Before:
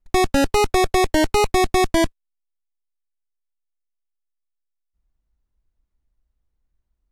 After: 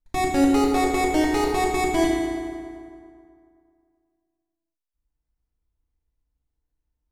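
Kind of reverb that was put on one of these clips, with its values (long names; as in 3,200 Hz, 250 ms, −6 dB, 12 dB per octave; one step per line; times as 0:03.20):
feedback delay network reverb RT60 2.3 s, low-frequency decay 1×, high-frequency decay 0.6×, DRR −4 dB
level −9.5 dB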